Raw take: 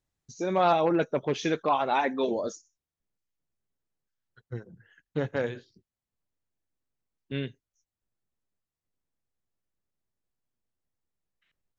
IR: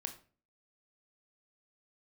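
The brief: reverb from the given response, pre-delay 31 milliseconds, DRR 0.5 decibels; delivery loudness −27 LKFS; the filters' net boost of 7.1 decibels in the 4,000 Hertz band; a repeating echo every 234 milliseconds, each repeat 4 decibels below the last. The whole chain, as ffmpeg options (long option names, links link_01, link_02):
-filter_complex "[0:a]equalizer=frequency=4000:width_type=o:gain=8.5,aecho=1:1:234|468|702|936|1170|1404|1638|1872|2106:0.631|0.398|0.25|0.158|0.0994|0.0626|0.0394|0.0249|0.0157,asplit=2[link_01][link_02];[1:a]atrim=start_sample=2205,adelay=31[link_03];[link_02][link_03]afir=irnorm=-1:irlink=0,volume=1.5dB[link_04];[link_01][link_04]amix=inputs=2:normalize=0,volume=-3dB"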